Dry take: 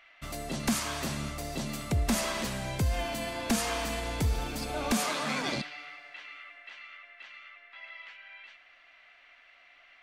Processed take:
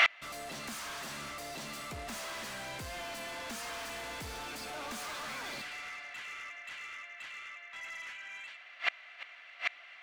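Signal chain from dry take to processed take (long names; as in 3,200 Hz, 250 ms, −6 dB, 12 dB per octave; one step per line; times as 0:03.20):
dynamic equaliser 1,500 Hz, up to +4 dB, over −50 dBFS, Q 1.3
mid-hump overdrive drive 31 dB, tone 7,600 Hz, clips at −16.5 dBFS
gate with flip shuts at −26 dBFS, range −31 dB
level +12.5 dB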